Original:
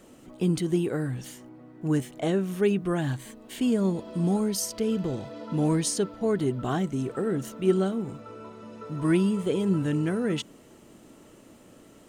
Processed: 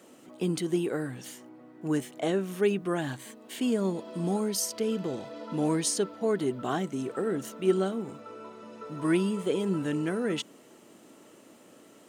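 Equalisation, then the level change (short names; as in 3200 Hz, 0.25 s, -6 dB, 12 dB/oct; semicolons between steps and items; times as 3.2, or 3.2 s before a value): Bessel high-pass 260 Hz, order 2; 0.0 dB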